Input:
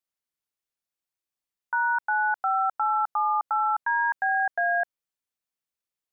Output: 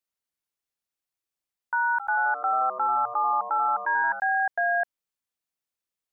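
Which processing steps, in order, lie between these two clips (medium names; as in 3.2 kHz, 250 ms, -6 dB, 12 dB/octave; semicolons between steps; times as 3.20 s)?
1.91–4.20 s: frequency-shifting echo 86 ms, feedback 50%, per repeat -130 Hz, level -12 dB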